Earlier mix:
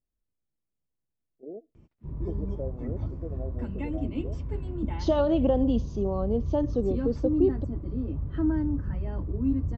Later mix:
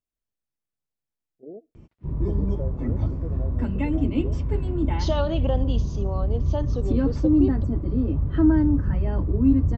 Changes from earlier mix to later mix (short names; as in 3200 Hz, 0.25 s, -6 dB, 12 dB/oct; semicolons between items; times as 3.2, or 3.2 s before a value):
first voice: remove HPF 190 Hz; second voice: add tilt shelf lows -7.5 dB, about 770 Hz; background +8.0 dB